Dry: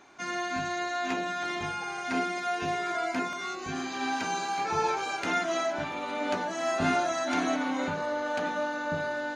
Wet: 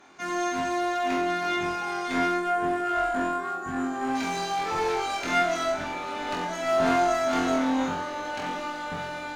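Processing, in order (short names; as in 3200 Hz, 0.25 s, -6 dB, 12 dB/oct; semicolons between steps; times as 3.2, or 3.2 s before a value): spectral gain 2.36–4.15, 1900–6800 Hz -18 dB; one-sided clip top -33 dBFS; flutter echo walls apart 3.9 m, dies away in 0.51 s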